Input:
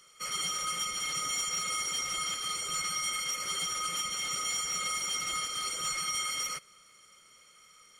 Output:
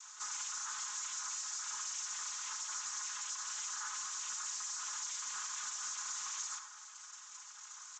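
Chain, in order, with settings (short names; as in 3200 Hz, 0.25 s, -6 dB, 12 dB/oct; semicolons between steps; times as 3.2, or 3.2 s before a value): noise vocoder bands 6; high shelf 5300 Hz +11 dB; in parallel at -3 dB: limiter -35 dBFS, peak gain reduction 21 dB; on the sum: soft clip -23.5 dBFS, distortion -16 dB; HPF 1000 Hz 24 dB/oct; band shelf 2900 Hz -12 dB; echo 71 ms -19 dB; reverb RT60 0.35 s, pre-delay 58 ms, DRR 8.5 dB; compressor 3:1, threshold -42 dBFS, peak gain reduction 11 dB; sample leveller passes 1; comb 4.8 ms, depth 51%; gain -1.5 dB; AAC 48 kbps 16000 Hz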